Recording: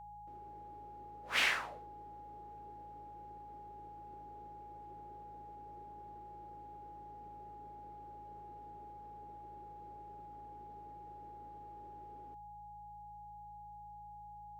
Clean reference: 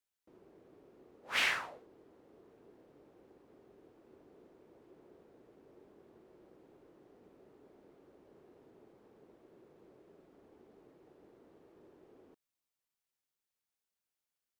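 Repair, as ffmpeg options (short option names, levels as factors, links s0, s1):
-af "bandreject=f=54.5:t=h:w=4,bandreject=f=109:t=h:w=4,bandreject=f=163.5:t=h:w=4,bandreject=f=830:w=30"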